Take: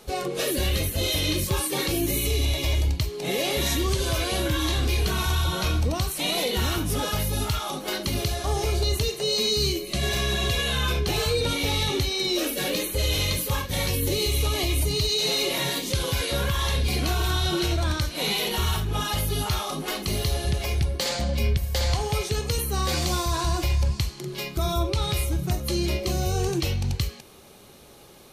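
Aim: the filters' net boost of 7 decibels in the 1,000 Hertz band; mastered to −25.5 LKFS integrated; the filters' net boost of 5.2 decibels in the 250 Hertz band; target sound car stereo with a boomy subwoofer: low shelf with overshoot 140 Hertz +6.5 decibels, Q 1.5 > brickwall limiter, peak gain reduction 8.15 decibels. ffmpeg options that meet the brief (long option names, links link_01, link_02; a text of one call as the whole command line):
ffmpeg -i in.wav -af "lowshelf=frequency=140:width_type=q:width=1.5:gain=6.5,equalizer=frequency=250:width_type=o:gain=8.5,equalizer=frequency=1000:width_type=o:gain=8.5,volume=-1.5dB,alimiter=limit=-17dB:level=0:latency=1" out.wav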